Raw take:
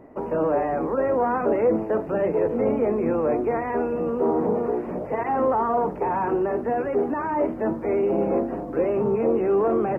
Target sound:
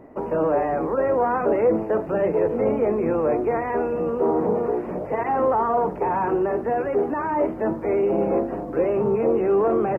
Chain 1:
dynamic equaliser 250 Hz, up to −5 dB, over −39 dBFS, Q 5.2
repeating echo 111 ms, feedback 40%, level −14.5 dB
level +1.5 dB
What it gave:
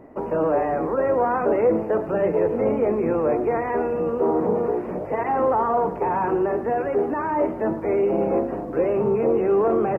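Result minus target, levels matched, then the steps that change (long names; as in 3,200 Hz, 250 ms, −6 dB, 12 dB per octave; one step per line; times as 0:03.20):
echo-to-direct +12 dB
change: repeating echo 111 ms, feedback 40%, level −26.5 dB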